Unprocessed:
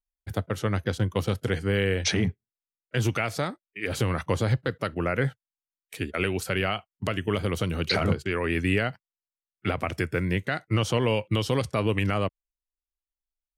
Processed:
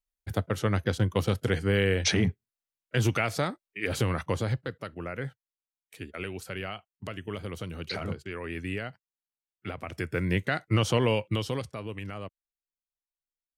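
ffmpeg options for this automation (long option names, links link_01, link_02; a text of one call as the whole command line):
ffmpeg -i in.wav -af "volume=9.5dB,afade=type=out:start_time=3.83:duration=1.04:silence=0.334965,afade=type=in:start_time=9.85:duration=0.52:silence=0.334965,afade=type=out:start_time=11.01:duration=0.78:silence=0.237137" out.wav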